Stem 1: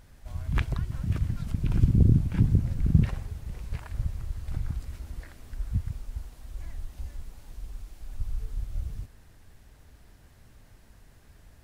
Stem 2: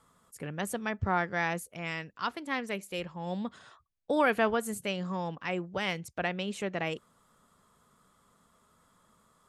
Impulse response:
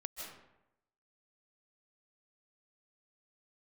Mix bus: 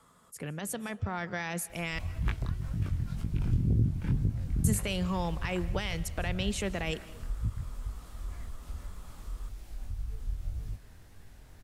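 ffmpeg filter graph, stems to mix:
-filter_complex "[0:a]acompressor=threshold=-37dB:ratio=1.5,flanger=delay=18:depth=6.7:speed=1.9,adelay=1700,volume=0dB[link_01];[1:a]acrossover=split=140|3000[link_02][link_03][link_04];[link_03]acompressor=threshold=-50dB:ratio=1.5[link_05];[link_02][link_05][link_04]amix=inputs=3:normalize=0,alimiter=level_in=5.5dB:limit=-24dB:level=0:latency=1:release=38,volume=-5.5dB,volume=2.5dB,asplit=3[link_06][link_07][link_08];[link_06]atrim=end=1.99,asetpts=PTS-STARTPTS,afade=type=out:start_time=1.986:duration=0.004:curve=hsin[link_09];[link_07]atrim=start=1.99:end=4.64,asetpts=PTS-STARTPTS,volume=0[link_10];[link_08]atrim=start=4.64,asetpts=PTS-STARTPTS,afade=type=in:duration=0.004:curve=hsin[link_11];[link_09][link_10][link_11]concat=n=3:v=0:a=1,asplit=2[link_12][link_13];[link_13]volume=-12dB[link_14];[2:a]atrim=start_sample=2205[link_15];[link_14][link_15]afir=irnorm=-1:irlink=0[link_16];[link_01][link_12][link_16]amix=inputs=3:normalize=0,dynaudnorm=framelen=430:gausssize=5:maxgain=4dB"

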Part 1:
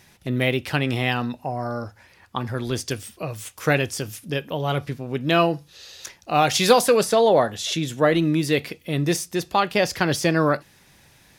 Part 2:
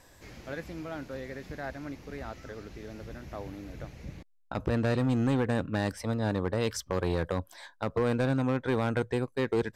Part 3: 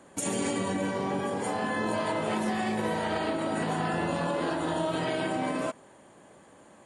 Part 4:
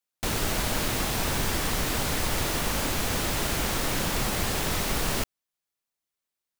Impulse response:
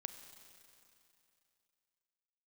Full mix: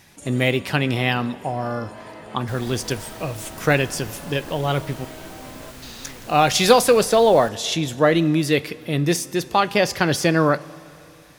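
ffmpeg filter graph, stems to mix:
-filter_complex "[0:a]volume=-0.5dB,asplit=3[link_01][link_02][link_03];[link_01]atrim=end=5.05,asetpts=PTS-STARTPTS,afade=type=out:start_time=5.046:duration=0.004:curve=hsin[link_04];[link_02]atrim=start=5.05:end=5.82,asetpts=PTS-STARTPTS,volume=0[link_05];[link_03]atrim=start=5.82,asetpts=PTS-STARTPTS,afade=type=in:duration=0.004:curve=hsin[link_06];[link_04][link_05][link_06]concat=n=3:v=0:a=1,asplit=2[link_07][link_08];[link_08]volume=-5.5dB[link_09];[1:a]alimiter=level_in=4dB:limit=-24dB:level=0:latency=1,volume=-4dB,adelay=750,volume=-13dB[link_10];[2:a]volume=-10.5dB[link_11];[3:a]adelay=2250,volume=-14dB[link_12];[4:a]atrim=start_sample=2205[link_13];[link_09][link_13]afir=irnorm=-1:irlink=0[link_14];[link_07][link_10][link_11][link_12][link_14]amix=inputs=5:normalize=0"

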